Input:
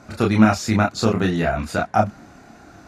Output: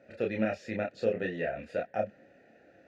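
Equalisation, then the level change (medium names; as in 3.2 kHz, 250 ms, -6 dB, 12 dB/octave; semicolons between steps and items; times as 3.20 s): vowel filter e; tone controls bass +8 dB, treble -2 dB; 0.0 dB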